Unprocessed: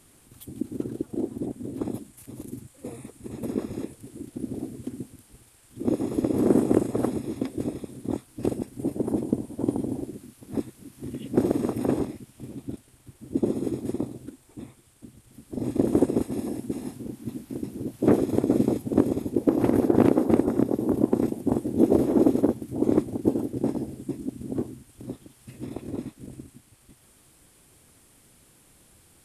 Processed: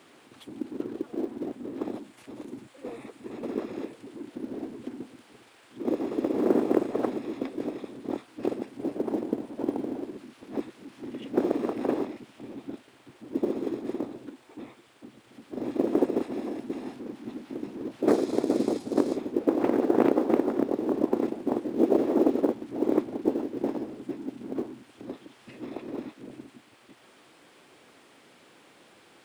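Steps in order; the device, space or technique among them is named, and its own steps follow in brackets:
phone line with mismatched companding (band-pass filter 330–3,500 Hz; mu-law and A-law mismatch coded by mu)
0:18.08–0:19.17: flat-topped bell 6,500 Hz +10.5 dB

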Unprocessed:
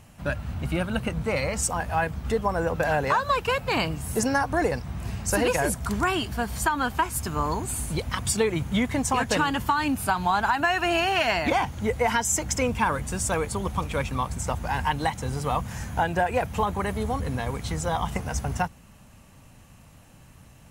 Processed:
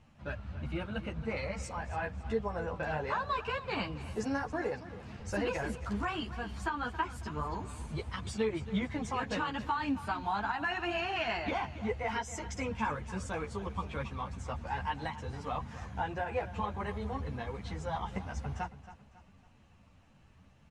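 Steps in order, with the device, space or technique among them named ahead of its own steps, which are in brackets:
0:04.51–0:05.20: high-pass filter 120 Hz 12 dB per octave
string-machine ensemble chorus (string-ensemble chorus; low-pass filter 4,400 Hz 12 dB per octave)
repeating echo 275 ms, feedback 39%, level −15 dB
level −7 dB

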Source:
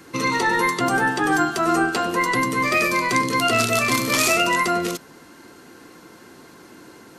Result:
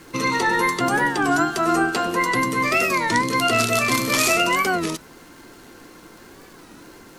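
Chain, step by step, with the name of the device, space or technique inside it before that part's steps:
warped LP (wow of a warped record 33 1/3 rpm, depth 160 cents; surface crackle −37 dBFS; pink noise bed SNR 32 dB)

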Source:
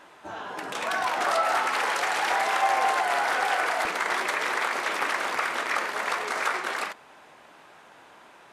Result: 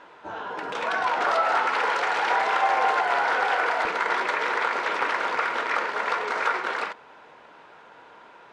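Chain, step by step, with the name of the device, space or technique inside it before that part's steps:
inside a cardboard box (low-pass filter 4,500 Hz 12 dB per octave; hollow resonant body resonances 470/950/1,400 Hz, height 7 dB, ringing for 30 ms)

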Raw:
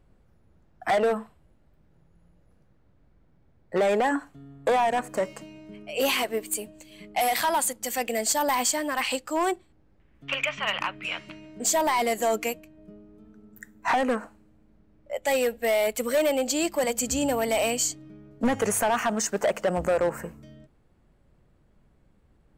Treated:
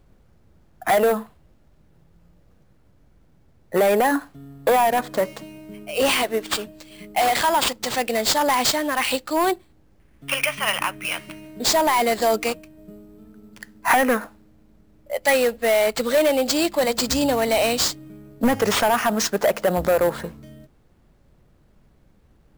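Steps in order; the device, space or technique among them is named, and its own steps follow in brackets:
0:13.90–0:15.36: dynamic equaliser 1,900 Hz, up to +6 dB, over −41 dBFS, Q 1.4
early companding sampler (sample-rate reduction 12,000 Hz, jitter 0%; log-companded quantiser 8 bits)
level +5 dB

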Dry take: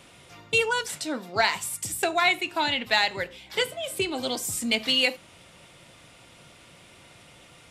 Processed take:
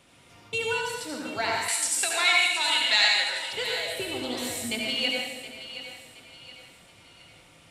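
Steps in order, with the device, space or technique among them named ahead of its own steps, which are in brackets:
bathroom (convolution reverb RT60 1.2 s, pre-delay 68 ms, DRR −2 dB)
0:01.68–0:03.53: meter weighting curve ITU-R 468
feedback echo with a high-pass in the loop 721 ms, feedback 41%, high-pass 420 Hz, level −12 dB
level −7.5 dB

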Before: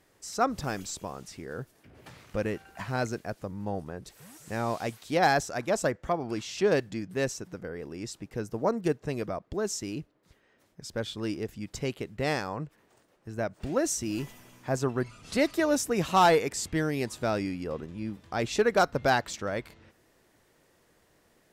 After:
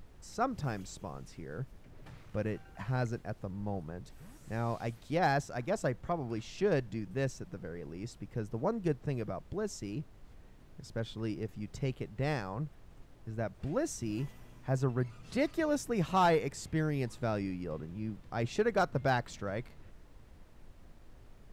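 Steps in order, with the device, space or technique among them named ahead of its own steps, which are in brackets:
car interior (parametric band 130 Hz +8 dB 0.94 octaves; high-shelf EQ 3,900 Hz −7 dB; brown noise bed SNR 17 dB)
level −6 dB

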